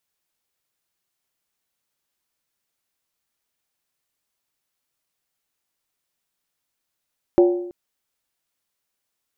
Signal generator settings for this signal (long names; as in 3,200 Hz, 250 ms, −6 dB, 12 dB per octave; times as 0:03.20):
struck skin length 0.33 s, lowest mode 353 Hz, decay 0.77 s, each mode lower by 8 dB, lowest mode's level −8.5 dB